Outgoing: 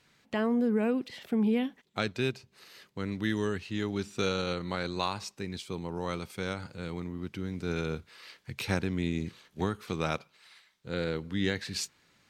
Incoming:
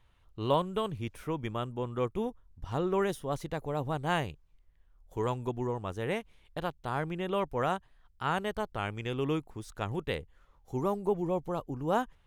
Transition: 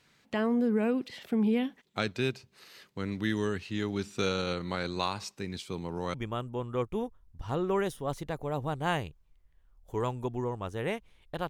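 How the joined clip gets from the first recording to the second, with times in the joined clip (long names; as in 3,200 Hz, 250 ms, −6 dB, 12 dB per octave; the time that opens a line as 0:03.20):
outgoing
0:06.14: continue with incoming from 0:01.37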